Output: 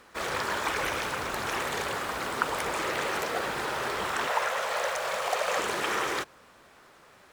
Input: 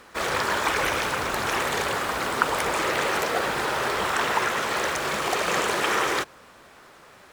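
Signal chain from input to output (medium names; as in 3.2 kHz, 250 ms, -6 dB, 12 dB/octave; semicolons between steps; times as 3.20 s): 4.27–5.59 s: resonant low shelf 420 Hz -9 dB, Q 3; trim -5.5 dB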